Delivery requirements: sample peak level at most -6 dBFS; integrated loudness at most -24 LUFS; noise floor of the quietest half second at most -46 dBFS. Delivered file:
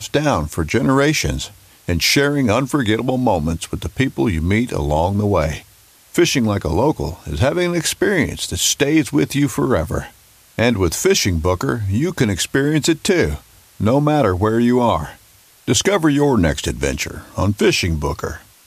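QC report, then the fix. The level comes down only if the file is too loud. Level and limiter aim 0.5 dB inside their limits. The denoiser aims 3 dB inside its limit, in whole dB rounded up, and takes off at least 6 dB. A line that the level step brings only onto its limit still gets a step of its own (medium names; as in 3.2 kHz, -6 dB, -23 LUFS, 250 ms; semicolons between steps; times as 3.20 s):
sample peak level -4.0 dBFS: fail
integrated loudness -17.5 LUFS: fail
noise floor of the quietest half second -49 dBFS: pass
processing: trim -7 dB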